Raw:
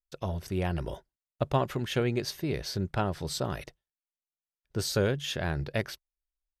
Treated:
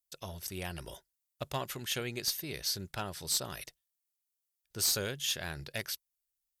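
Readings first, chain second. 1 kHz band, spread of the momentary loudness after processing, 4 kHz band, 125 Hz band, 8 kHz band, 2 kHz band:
-8.0 dB, 15 LU, +2.5 dB, -12.0 dB, +7.0 dB, -3.5 dB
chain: pre-emphasis filter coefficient 0.9; one-sided clip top -33 dBFS; trim +8 dB

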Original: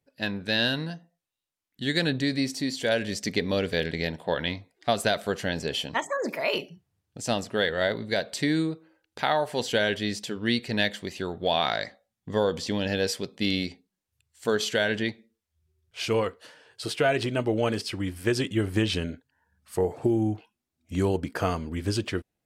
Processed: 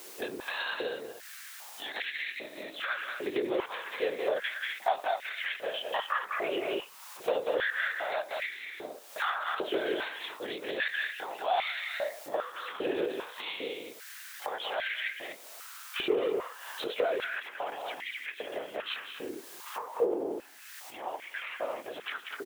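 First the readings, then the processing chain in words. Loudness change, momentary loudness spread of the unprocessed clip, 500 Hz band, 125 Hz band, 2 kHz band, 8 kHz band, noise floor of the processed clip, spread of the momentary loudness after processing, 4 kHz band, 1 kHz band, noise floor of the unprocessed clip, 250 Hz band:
-6.5 dB, 8 LU, -5.0 dB, -29.0 dB, -3.0 dB, -11.0 dB, -49 dBFS, 11 LU, -7.5 dB, -2.5 dB, -85 dBFS, -14.0 dB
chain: single-diode clipper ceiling -26.5 dBFS; LPC vocoder at 8 kHz whisper; level rider gain up to 11.5 dB; loudspeakers at several distances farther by 64 m -8 dB, 84 m -11 dB; tremolo triangle 1.5 Hz, depth 60%; in parallel at -11.5 dB: word length cut 6-bit, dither triangular; on the sum: peak limiter -10 dBFS, peak gain reduction 8 dB; compression 3:1, threshold -37 dBFS, peak gain reduction 16.5 dB; step-sequenced high-pass 2.5 Hz 370–2100 Hz

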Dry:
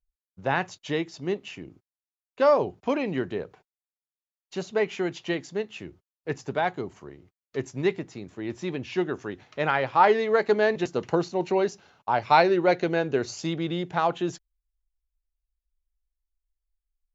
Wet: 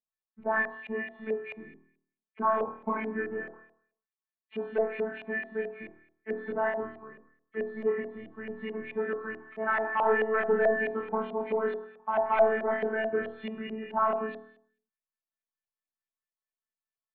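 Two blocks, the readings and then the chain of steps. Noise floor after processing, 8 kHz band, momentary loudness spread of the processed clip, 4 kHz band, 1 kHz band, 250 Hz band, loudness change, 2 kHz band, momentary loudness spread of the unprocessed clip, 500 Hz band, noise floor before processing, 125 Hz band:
under -85 dBFS, no reading, 15 LU, under -10 dB, -5.0 dB, -8.0 dB, -4.5 dB, -1.5 dB, 17 LU, -4.0 dB, under -85 dBFS, under -15 dB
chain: knee-point frequency compression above 1.7 kHz 1.5:1; high-pass 120 Hz 24 dB/octave; peaking EQ 550 Hz -13 dB 0.39 oct; robot voice 219 Hz; saturation -18.5 dBFS, distortion -13 dB; distance through air 420 m; on a send: flutter echo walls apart 4.4 m, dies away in 0.61 s; on the sum: LFO low-pass saw up 4.6 Hz 630–2700 Hz

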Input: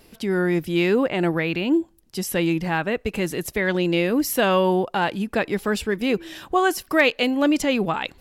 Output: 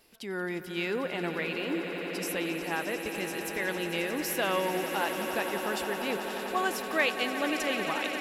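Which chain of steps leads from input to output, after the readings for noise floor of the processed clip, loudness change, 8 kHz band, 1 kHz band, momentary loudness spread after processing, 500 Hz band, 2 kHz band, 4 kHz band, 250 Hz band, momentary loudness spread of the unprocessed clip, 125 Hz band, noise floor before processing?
-37 dBFS, -9.0 dB, -5.5 dB, -7.0 dB, 6 LU, -9.5 dB, -6.0 dB, -5.5 dB, -12.5 dB, 7 LU, -14.5 dB, -55 dBFS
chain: bass shelf 360 Hz -11.5 dB; on a send: echo with a slow build-up 89 ms, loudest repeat 8, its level -13 dB; on the sum: trim -7.5 dB

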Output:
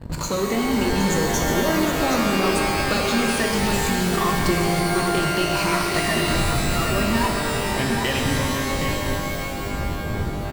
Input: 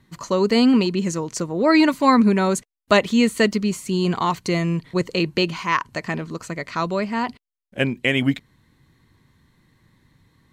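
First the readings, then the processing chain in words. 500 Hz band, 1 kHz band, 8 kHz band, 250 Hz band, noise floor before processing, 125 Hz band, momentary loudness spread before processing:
-0.5 dB, +1.5 dB, +8.0 dB, -3.0 dB, -85 dBFS, +3.0 dB, 12 LU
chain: drifting ripple filter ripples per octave 1.3, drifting -1.1 Hz, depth 13 dB; wind noise 120 Hz -26 dBFS; in parallel at -5 dB: fuzz box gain 36 dB, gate -35 dBFS; on the sum: compression, threshold -18 dBFS, peak gain reduction 11 dB; on a send: delay 768 ms -8.5 dB; on the sum: pitch-shifted reverb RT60 3 s, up +12 st, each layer -2 dB, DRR 1 dB; trim -5 dB

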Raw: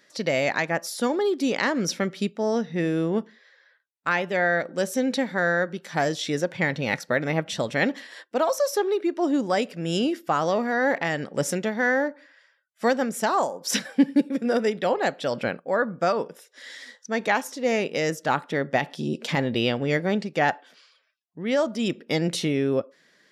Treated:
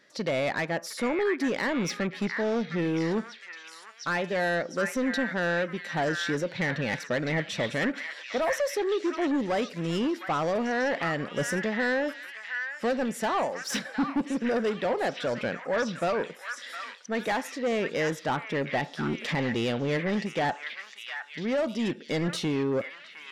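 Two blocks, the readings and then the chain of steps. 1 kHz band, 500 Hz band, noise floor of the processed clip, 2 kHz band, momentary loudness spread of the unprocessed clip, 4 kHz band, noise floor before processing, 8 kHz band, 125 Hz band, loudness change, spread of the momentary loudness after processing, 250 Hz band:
-4.5 dB, -4.0 dB, -47 dBFS, -3.0 dB, 5 LU, -3.5 dB, -63 dBFS, -6.0 dB, -2.5 dB, -4.0 dB, 7 LU, -3.5 dB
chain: saturation -22 dBFS, distortion -11 dB; treble shelf 5.7 kHz -8.5 dB; on a send: repeats whose band climbs or falls 710 ms, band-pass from 1.7 kHz, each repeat 0.7 oct, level -2 dB

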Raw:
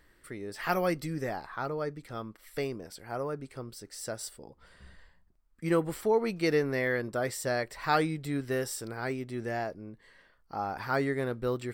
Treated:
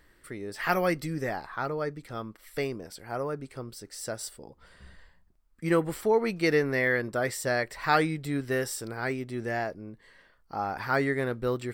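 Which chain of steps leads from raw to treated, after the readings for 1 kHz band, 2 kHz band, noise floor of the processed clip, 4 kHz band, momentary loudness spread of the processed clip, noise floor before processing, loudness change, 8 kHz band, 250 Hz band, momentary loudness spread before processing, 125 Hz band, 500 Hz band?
+2.5 dB, +5.0 dB, -63 dBFS, +2.5 dB, 14 LU, -65 dBFS, +2.5 dB, +2.0 dB, +2.0 dB, 14 LU, +2.0 dB, +2.0 dB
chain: dynamic bell 1.9 kHz, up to +4 dB, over -44 dBFS, Q 1.8; trim +2 dB

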